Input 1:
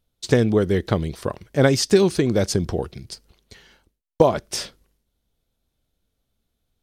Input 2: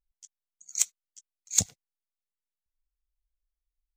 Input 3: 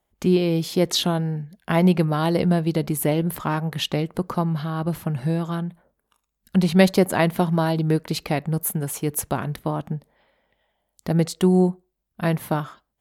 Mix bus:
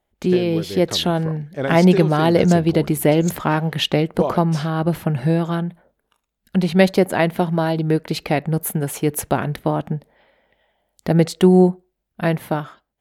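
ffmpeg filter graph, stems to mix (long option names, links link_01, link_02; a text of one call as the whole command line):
ffmpeg -i stem1.wav -i stem2.wav -i stem3.wav -filter_complex "[0:a]volume=-10.5dB[link_01];[1:a]adelay=1700,volume=-10dB[link_02];[2:a]equalizer=frequency=1100:width_type=o:width=0.48:gain=-5,volume=2.5dB[link_03];[link_01][link_02][link_03]amix=inputs=3:normalize=0,bass=frequency=250:gain=-4,treble=frequency=4000:gain=-7,dynaudnorm=framelen=190:gausssize=11:maxgain=7dB" out.wav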